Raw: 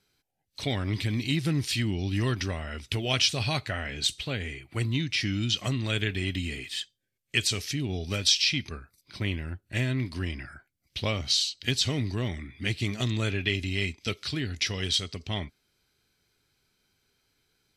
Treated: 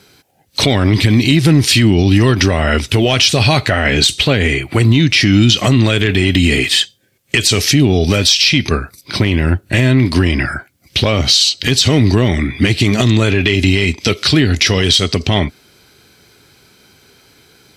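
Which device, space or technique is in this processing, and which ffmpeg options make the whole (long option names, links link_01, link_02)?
mastering chain: -af "highpass=59,equalizer=frequency=450:width_type=o:width=2.7:gain=4,acompressor=threshold=-31dB:ratio=2,asoftclip=type=tanh:threshold=-17dB,alimiter=level_in=24.5dB:limit=-1dB:release=50:level=0:latency=1,volume=-1dB"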